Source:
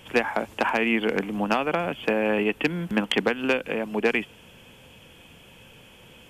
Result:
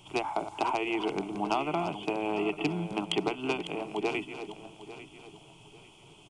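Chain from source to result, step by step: backward echo that repeats 424 ms, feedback 54%, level -10.5 dB; resampled via 22.05 kHz; static phaser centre 340 Hz, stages 8; trim -2 dB

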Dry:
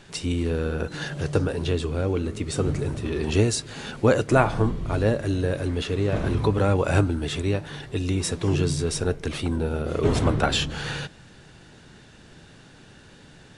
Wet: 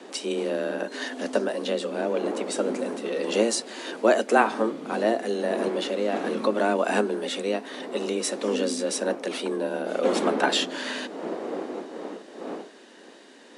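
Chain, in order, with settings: wind noise 340 Hz -35 dBFS; high-pass 170 Hz 12 dB/octave; frequency shift +110 Hz

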